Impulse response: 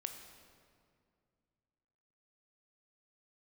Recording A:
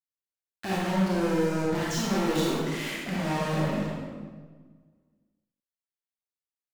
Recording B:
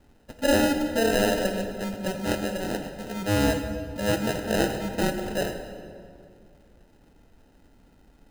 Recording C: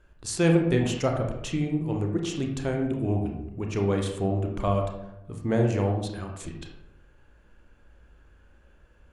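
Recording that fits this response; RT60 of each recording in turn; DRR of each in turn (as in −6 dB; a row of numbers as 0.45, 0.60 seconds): B; 1.5, 2.2, 0.80 seconds; −6.5, 5.5, 1.5 decibels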